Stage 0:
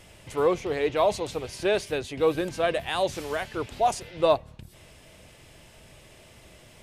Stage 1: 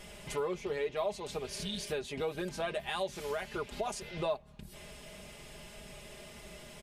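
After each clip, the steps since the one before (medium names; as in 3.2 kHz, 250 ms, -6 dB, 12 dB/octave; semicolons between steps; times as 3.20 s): spectral replace 1.49–1.78 s, 290–2800 Hz after; comb 4.9 ms, depth 77%; compression 3:1, threshold -36 dBFS, peak gain reduction 17.5 dB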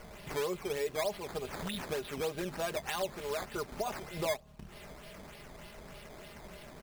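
decimation with a swept rate 11×, swing 100% 3.3 Hz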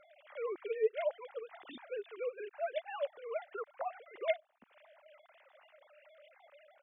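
formants replaced by sine waves; trim -2.5 dB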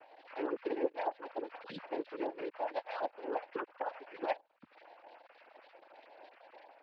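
compression 2.5:1, threshold -40 dBFS, peak gain reduction 10.5 dB; noise-vocoded speech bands 8; distance through air 160 m; trim +5.5 dB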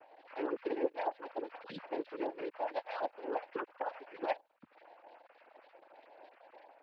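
tape noise reduction on one side only decoder only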